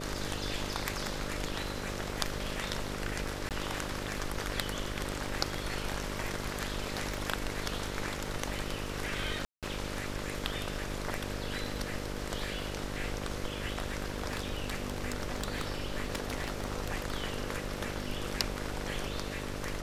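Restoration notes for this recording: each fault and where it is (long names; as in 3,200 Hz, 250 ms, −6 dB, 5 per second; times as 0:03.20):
mains buzz 50 Hz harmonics 12 −40 dBFS
surface crackle 10 per second −43 dBFS
0:03.49–0:03.51: drop-out 18 ms
0:07.14: click
0:09.45–0:09.63: drop-out 177 ms
0:14.27–0:16.90: clipping −27 dBFS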